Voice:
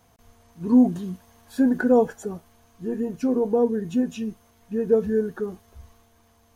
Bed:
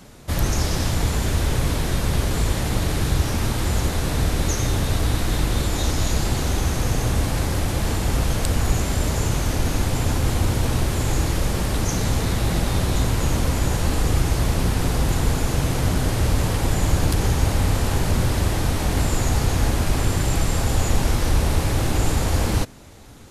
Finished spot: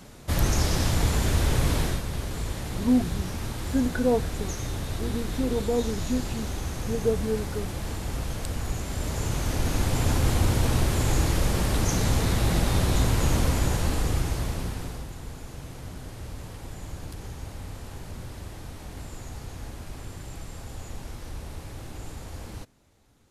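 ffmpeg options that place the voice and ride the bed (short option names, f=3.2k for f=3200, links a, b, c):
-filter_complex "[0:a]adelay=2150,volume=-5.5dB[a];[1:a]volume=6dB,afade=t=out:st=1.82:d=0.21:silence=0.398107,afade=t=in:st=8.83:d=1.3:silence=0.398107,afade=t=out:st=13.4:d=1.7:silence=0.149624[b];[a][b]amix=inputs=2:normalize=0"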